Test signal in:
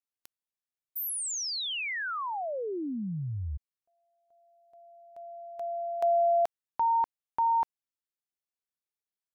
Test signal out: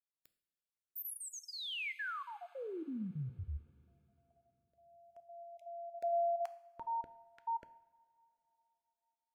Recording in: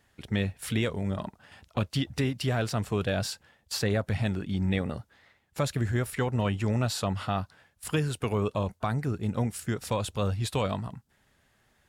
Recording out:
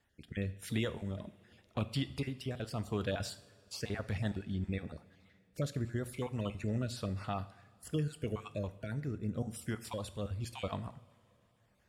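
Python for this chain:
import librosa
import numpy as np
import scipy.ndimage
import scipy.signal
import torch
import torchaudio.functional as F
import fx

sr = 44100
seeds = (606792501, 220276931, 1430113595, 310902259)

y = fx.spec_dropout(x, sr, seeds[0], share_pct=24)
y = fx.rotary(y, sr, hz=0.9)
y = fx.rev_double_slope(y, sr, seeds[1], early_s=0.59, late_s=3.6, knee_db=-18, drr_db=12.0)
y = F.gain(torch.from_numpy(y), -6.0).numpy()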